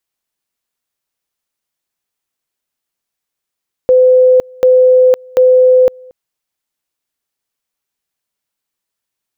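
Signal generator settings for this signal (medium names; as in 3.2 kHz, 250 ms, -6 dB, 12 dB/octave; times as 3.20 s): two-level tone 509 Hz -4 dBFS, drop 28.5 dB, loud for 0.51 s, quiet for 0.23 s, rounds 3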